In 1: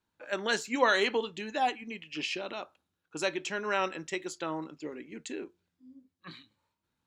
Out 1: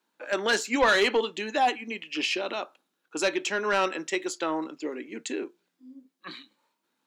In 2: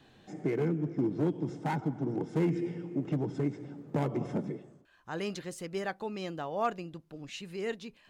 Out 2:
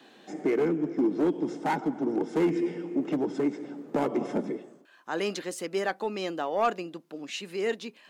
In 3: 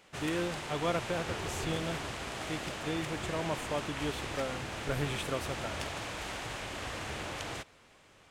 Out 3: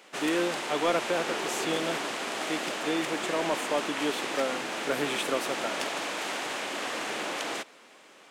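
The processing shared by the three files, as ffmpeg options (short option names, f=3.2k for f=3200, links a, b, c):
-af "highpass=f=230:w=0.5412,highpass=f=230:w=1.3066,asoftclip=type=tanh:threshold=-22dB,volume=7dB"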